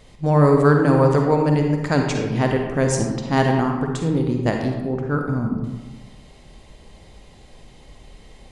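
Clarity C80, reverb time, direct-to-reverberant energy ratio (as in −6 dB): 5.0 dB, 1.3 s, 2.0 dB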